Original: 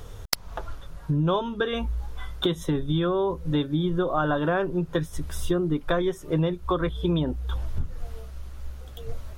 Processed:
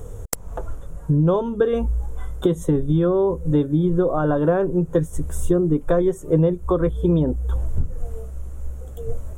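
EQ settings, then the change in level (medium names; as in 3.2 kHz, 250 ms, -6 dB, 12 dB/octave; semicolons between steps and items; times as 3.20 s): tilt shelf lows +7.5 dB, about 1.1 kHz; peaking EQ 480 Hz +6 dB 0.38 oct; resonant high shelf 5.9 kHz +9 dB, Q 3; -1.0 dB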